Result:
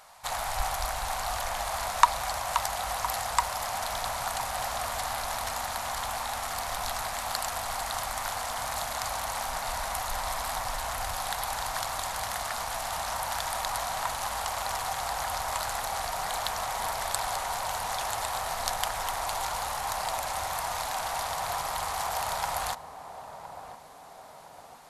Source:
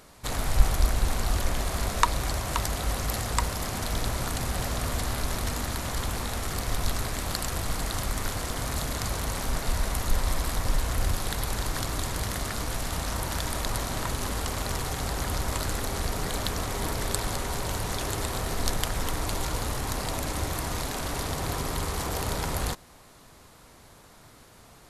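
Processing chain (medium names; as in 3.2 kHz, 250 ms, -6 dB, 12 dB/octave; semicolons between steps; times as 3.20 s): resonant low shelf 520 Hz -13.5 dB, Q 3; band-passed feedback delay 1012 ms, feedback 78%, band-pass 300 Hz, level -6 dB; trim -1 dB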